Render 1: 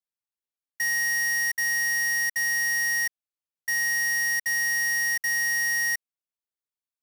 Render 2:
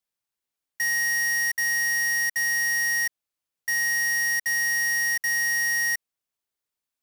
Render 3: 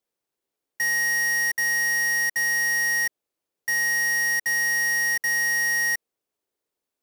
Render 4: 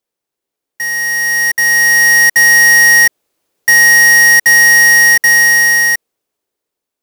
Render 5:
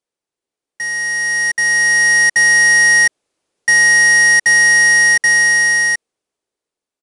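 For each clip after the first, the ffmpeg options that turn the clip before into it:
ffmpeg -i in.wav -af "alimiter=level_in=6.5dB:limit=-24dB:level=0:latency=1,volume=-6.5dB,volume=6.5dB" out.wav
ffmpeg -i in.wav -af "equalizer=frequency=410:width_type=o:width=1.7:gain=13.5" out.wav
ffmpeg -i in.wav -af "dynaudnorm=framelen=300:gausssize=11:maxgain=13dB,volume=4dB" out.wav
ffmpeg -i in.wav -af "aresample=22050,aresample=44100,volume=-3.5dB" out.wav

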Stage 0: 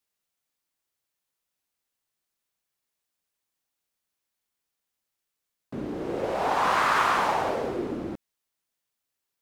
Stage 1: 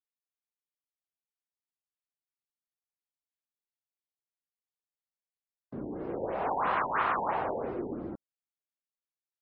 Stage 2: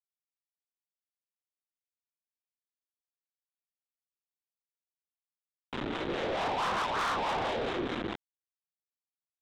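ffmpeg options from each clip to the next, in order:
ffmpeg -i in.wav -filter_complex "[0:a]acrossover=split=2900[link_01][link_02];[link_02]acompressor=threshold=-51dB:ratio=4:attack=1:release=60[link_03];[link_01][link_03]amix=inputs=2:normalize=0,afftdn=noise_reduction=14:noise_floor=-47,afftfilt=real='re*lt(b*sr/1024,930*pow(5500/930,0.5+0.5*sin(2*PI*3*pts/sr)))':imag='im*lt(b*sr/1024,930*pow(5500/930,0.5+0.5*sin(2*PI*3*pts/sr)))':win_size=1024:overlap=0.75,volume=-5dB" out.wav
ffmpeg -i in.wav -filter_complex "[0:a]aresample=8000,acrusher=bits=5:mix=0:aa=0.000001,aresample=44100,acrossover=split=690[link_01][link_02];[link_01]aeval=exprs='val(0)*(1-0.5/2+0.5/2*cos(2*PI*4.6*n/s))':channel_layout=same[link_03];[link_02]aeval=exprs='val(0)*(1-0.5/2-0.5/2*cos(2*PI*4.6*n/s))':channel_layout=same[link_04];[link_03][link_04]amix=inputs=2:normalize=0,asoftclip=type=tanh:threshold=-35dB,volume=7dB" out.wav

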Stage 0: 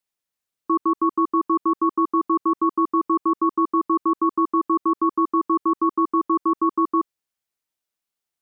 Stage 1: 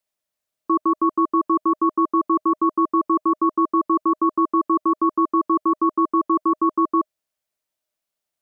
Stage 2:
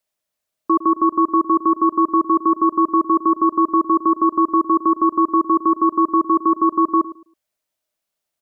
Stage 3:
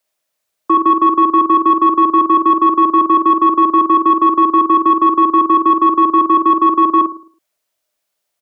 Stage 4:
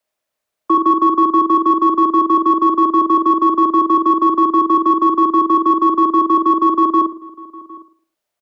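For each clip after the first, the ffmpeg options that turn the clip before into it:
ffmpeg -i in.wav -af "equalizer=frequency=620:width_type=o:width=0.21:gain=13,volume=1dB" out.wav
ffmpeg -i in.wav -filter_complex "[0:a]asplit=2[link_01][link_02];[link_02]adelay=108,lowpass=frequency=990:poles=1,volume=-14.5dB,asplit=2[link_03][link_04];[link_04]adelay=108,lowpass=frequency=990:poles=1,volume=0.26,asplit=2[link_05][link_06];[link_06]adelay=108,lowpass=frequency=990:poles=1,volume=0.26[link_07];[link_01][link_03][link_05][link_07]amix=inputs=4:normalize=0,volume=3dB" out.wav
ffmpeg -i in.wav -filter_complex "[0:a]asplit=2[link_01][link_02];[link_02]adelay=47,volume=-5.5dB[link_03];[link_01][link_03]amix=inputs=2:normalize=0,acrossover=split=130|320[link_04][link_05][link_06];[link_06]acontrast=38[link_07];[link_04][link_05][link_07]amix=inputs=3:normalize=0" out.wav
ffmpeg -i in.wav -filter_complex "[0:a]highshelf=frequency=2700:gain=-7.5,acrossover=split=270|560|1500[link_01][link_02][link_03][link_04];[link_04]asoftclip=type=tanh:threshold=-30dB[link_05];[link_01][link_02][link_03][link_05]amix=inputs=4:normalize=0,asplit=2[link_06][link_07];[link_07]adelay=758,volume=-21dB,highshelf=frequency=4000:gain=-17.1[link_08];[link_06][link_08]amix=inputs=2:normalize=0" out.wav

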